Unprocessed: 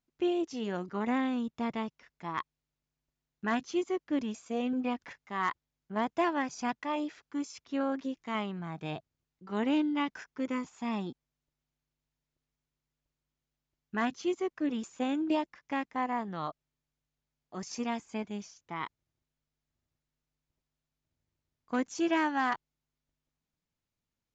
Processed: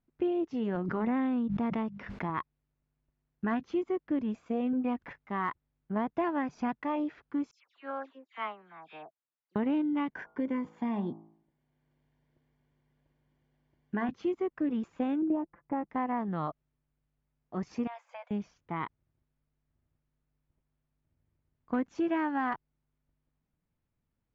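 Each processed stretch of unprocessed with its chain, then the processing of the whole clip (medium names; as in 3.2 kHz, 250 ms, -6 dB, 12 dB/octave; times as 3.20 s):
0.75–2.30 s: high-pass 47 Hz + hum notches 50/100/150/200 Hz + swell ahead of each attack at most 47 dB/s
7.51–9.56 s: high-pass 780 Hz + phase dispersion lows, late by 105 ms, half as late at 2.7 kHz + upward expansion, over -50 dBFS
10.10–14.09 s: comb of notches 1.3 kHz + de-hum 54.49 Hz, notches 26 + three bands compressed up and down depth 40%
15.22–15.90 s: low-pass 1 kHz + comb 5.9 ms, depth 43%
17.87–18.31 s: brick-wall FIR high-pass 490 Hz + compression 3:1, threshold -42 dBFS
whole clip: low-pass 2.1 kHz 12 dB/octave; bass shelf 310 Hz +7 dB; compression 2.5:1, threshold -32 dBFS; trim +2.5 dB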